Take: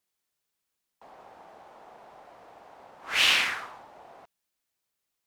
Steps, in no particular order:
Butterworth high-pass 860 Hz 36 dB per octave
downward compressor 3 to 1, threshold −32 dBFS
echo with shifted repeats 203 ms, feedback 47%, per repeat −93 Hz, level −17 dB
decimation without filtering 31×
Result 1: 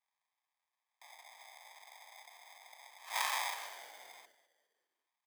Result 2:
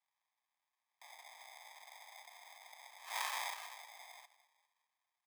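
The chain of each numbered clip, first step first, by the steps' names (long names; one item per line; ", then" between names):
decimation without filtering, then Butterworth high-pass, then echo with shifted repeats, then downward compressor
downward compressor, then echo with shifted repeats, then decimation without filtering, then Butterworth high-pass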